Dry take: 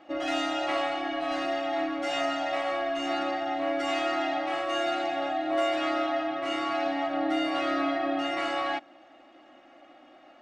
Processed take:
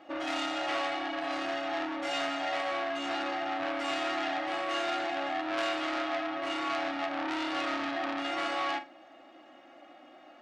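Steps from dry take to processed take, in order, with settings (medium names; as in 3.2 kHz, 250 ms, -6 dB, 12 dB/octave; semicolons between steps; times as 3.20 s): bass shelf 73 Hz -10.5 dB; on a send: flutter echo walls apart 7.5 m, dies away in 0.22 s; on the sum: transformer saturation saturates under 2.6 kHz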